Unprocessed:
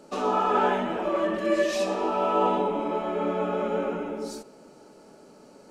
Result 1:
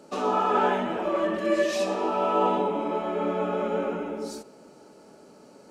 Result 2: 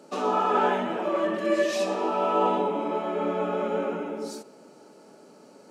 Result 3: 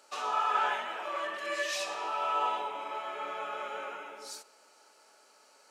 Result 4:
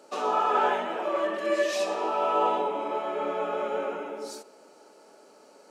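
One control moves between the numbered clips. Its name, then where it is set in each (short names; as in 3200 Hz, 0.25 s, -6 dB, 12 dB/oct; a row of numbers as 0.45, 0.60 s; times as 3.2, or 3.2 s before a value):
HPF, cutoff: 43, 150, 1200, 440 Hz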